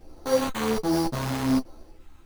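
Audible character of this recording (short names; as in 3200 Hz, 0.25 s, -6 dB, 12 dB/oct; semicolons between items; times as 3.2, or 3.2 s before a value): a quantiser's noise floor 12-bit, dither triangular; phasing stages 2, 1.3 Hz, lowest notch 520–3400 Hz; aliases and images of a low sample rate 5200 Hz, jitter 0%; a shimmering, thickened sound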